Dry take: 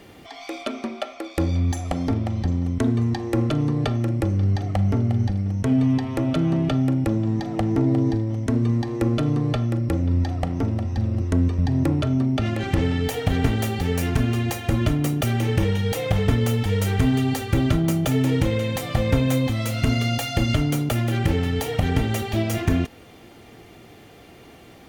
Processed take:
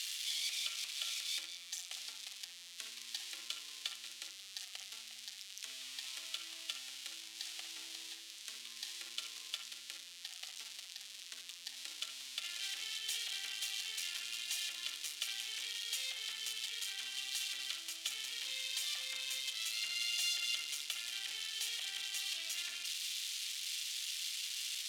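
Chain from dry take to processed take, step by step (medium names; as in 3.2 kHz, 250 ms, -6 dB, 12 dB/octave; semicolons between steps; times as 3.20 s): zero-crossing glitches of -15.5 dBFS; ladder band-pass 4.1 kHz, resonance 35%; reverberation, pre-delay 51 ms, DRR 7 dB; trim +2 dB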